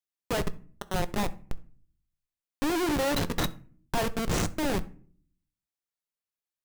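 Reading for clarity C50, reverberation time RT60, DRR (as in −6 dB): 19.0 dB, 0.45 s, 11.0 dB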